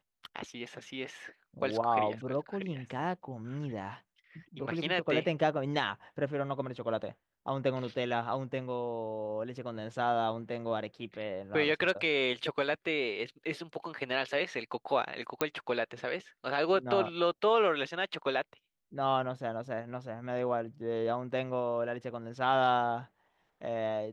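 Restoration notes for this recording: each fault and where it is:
15.41 pop -14 dBFS

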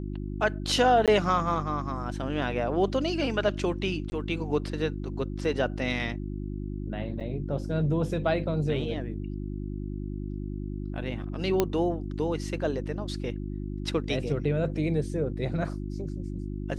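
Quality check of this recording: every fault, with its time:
hum 50 Hz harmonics 7 -34 dBFS
1.06–1.08 gap 17 ms
4.1–4.12 gap 20 ms
7.2–7.21 gap 6.9 ms
11.6 pop -9 dBFS

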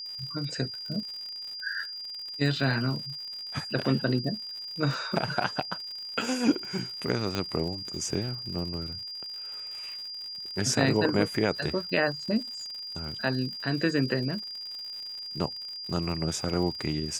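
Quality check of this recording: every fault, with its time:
crackle 99/s -37 dBFS
tone 4800 Hz -36 dBFS
7.35 pop -15 dBFS

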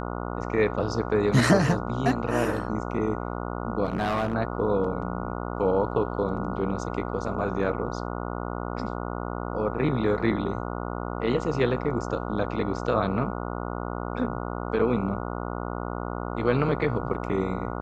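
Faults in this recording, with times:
buzz 60 Hz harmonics 24 -32 dBFS
3.84–4.34 clipped -21.5 dBFS

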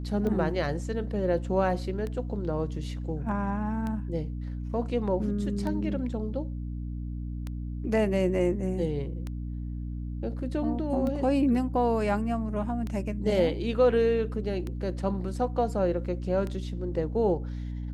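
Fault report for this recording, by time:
hum 60 Hz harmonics 5 -34 dBFS
tick 33 1/3 rpm -22 dBFS

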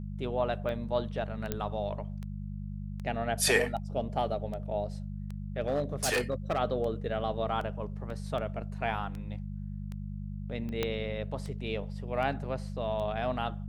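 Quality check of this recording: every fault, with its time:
hum 50 Hz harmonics 4 -38 dBFS
tick 78 rpm -28 dBFS
1.52 pop -16 dBFS
5.6–6.59 clipped -24.5 dBFS
8.1 gap 2.4 ms
10.83 pop -15 dBFS

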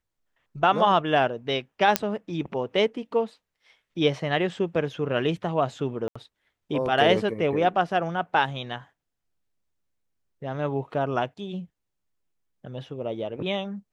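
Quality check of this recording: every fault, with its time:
1.96 pop -2 dBFS
6.08–6.16 gap 75 ms

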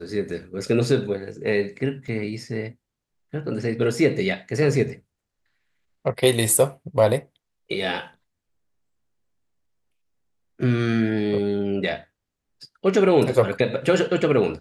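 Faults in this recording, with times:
2.08 gap 2.3 ms

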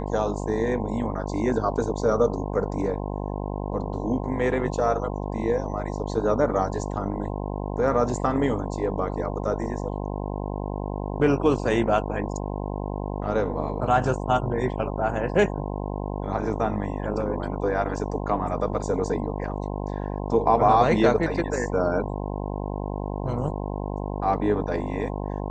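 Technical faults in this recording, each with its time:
buzz 50 Hz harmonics 21 -30 dBFS

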